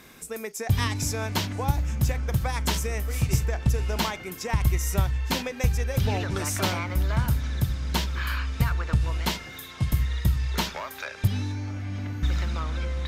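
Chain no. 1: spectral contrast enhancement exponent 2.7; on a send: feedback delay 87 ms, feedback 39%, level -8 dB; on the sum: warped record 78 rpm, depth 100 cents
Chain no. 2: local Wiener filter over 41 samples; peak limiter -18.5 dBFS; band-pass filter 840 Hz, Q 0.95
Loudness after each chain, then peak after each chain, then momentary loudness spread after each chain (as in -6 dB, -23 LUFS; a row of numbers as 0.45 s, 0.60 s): -29.0 LUFS, -42.0 LUFS; -10.5 dBFS, -21.5 dBFS; 7 LU, 9 LU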